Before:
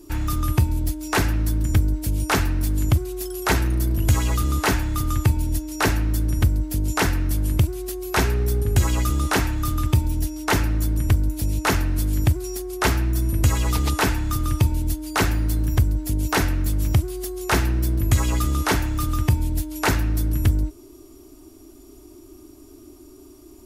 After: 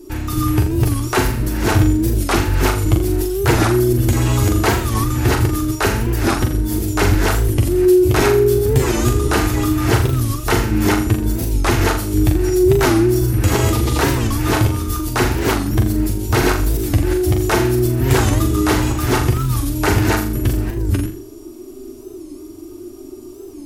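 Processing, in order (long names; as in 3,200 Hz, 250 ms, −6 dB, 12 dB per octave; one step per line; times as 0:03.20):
delay that plays each chunk backwards 357 ms, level −1 dB
parametric band 370 Hz +8.5 dB 0.84 octaves
in parallel at +1.5 dB: brickwall limiter −9.5 dBFS, peak gain reduction 7 dB
on the sum: flanger 0.78 Hz, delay 7.8 ms, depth 2 ms, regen +34%
on a send: flutter between parallel walls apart 7.1 metres, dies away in 0.44 s
on the sum: wow of a warped record 45 rpm, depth 160 cents
level −1 dB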